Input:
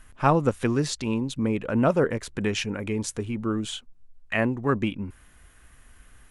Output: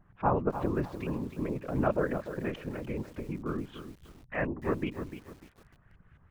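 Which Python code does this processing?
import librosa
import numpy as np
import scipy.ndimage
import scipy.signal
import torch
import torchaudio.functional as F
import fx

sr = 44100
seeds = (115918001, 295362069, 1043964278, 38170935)

y = fx.filter_lfo_lowpass(x, sr, shape='saw_up', hz=4.7, low_hz=740.0, high_hz=2700.0, q=1.3)
y = fx.whisperise(y, sr, seeds[0])
y = fx.echo_crushed(y, sr, ms=297, feedback_pct=35, bits=7, wet_db=-10)
y = y * 10.0 ** (-8.0 / 20.0)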